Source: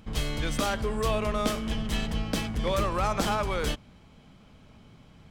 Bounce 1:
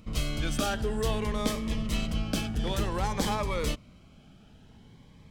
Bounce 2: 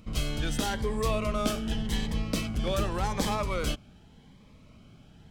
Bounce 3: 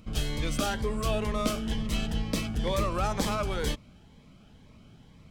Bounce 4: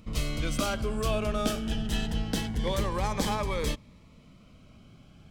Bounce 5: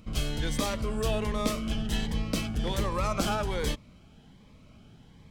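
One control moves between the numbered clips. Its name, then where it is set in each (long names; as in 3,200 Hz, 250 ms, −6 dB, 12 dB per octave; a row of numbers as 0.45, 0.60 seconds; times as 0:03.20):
phaser whose notches keep moving one way, speed: 0.54, 0.86, 2.1, 0.24, 1.3 Hertz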